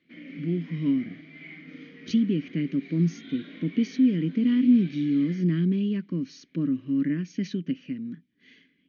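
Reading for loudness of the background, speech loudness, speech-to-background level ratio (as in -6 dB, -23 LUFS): -44.5 LUFS, -26.5 LUFS, 18.0 dB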